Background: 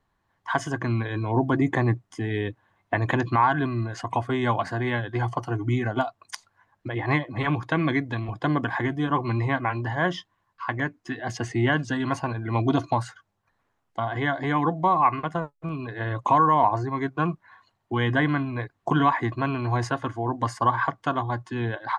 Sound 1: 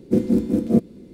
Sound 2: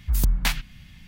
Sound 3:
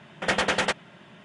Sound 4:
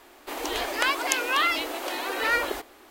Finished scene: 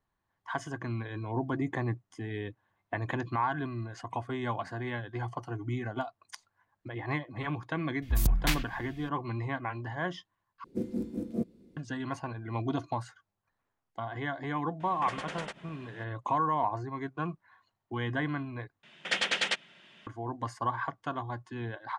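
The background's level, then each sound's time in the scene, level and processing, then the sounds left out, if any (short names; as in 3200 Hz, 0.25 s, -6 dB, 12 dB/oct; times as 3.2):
background -9.5 dB
8.02 add 2 -4.5 dB
10.64 replace with 1 -15 dB
14.8 add 3 -3.5 dB + compressor 10:1, threshold -33 dBFS
18.83 replace with 3 -11.5 dB + weighting filter D
not used: 4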